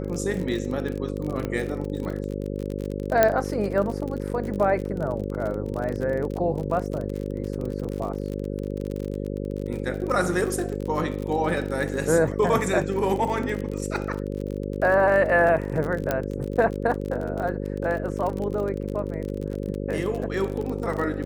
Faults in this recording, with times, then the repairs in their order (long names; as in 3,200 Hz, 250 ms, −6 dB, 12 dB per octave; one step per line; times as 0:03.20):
mains buzz 50 Hz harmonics 11 −30 dBFS
surface crackle 41 per second −29 dBFS
0:01.45: click −16 dBFS
0:03.23: click −4 dBFS
0:16.11: click −10 dBFS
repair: click removal
hum removal 50 Hz, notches 11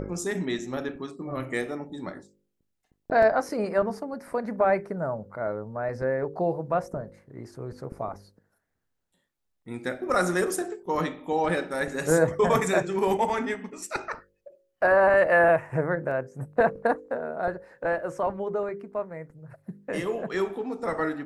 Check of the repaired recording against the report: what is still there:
0:01.45: click
0:03.23: click
0:16.11: click